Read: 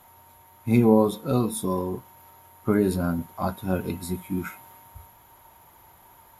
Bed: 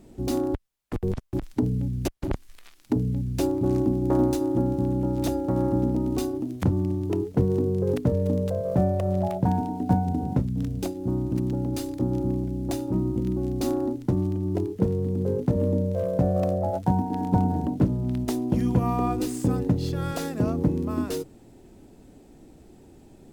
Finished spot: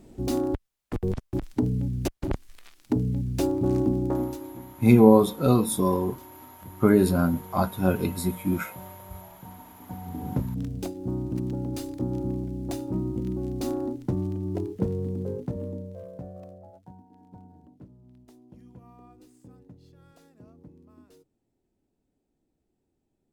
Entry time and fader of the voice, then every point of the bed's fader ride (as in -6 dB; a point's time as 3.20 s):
4.15 s, +3.0 dB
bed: 4.00 s -0.5 dB
4.75 s -23 dB
9.79 s -23 dB
10.29 s -3.5 dB
15.07 s -3.5 dB
17.02 s -27 dB